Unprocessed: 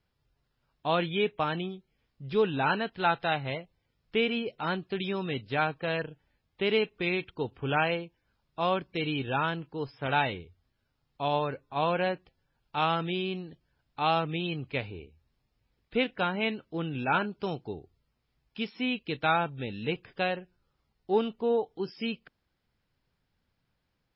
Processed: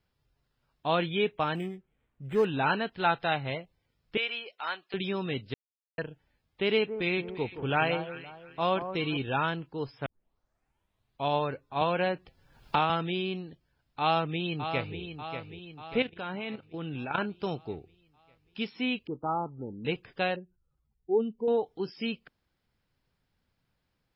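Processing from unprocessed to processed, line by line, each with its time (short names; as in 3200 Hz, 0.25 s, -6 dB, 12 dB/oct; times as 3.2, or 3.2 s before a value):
1.55–2.45 decimation joined by straight lines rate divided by 8×
4.17–4.94 HPF 920 Hz
5.54–5.98 mute
6.7–9.17 echo with dull and thin repeats by turns 0.172 s, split 1300 Hz, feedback 55%, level -9.5 dB
10.06 tape start 1.19 s
11.81–12.9 three-band squash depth 100%
14–15 echo throw 0.59 s, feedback 55%, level -8.5 dB
16.02–17.18 level quantiser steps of 12 dB
19.07–19.85 rippled Chebyshev low-pass 1300 Hz, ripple 6 dB
20.36–21.48 spectral contrast raised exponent 1.9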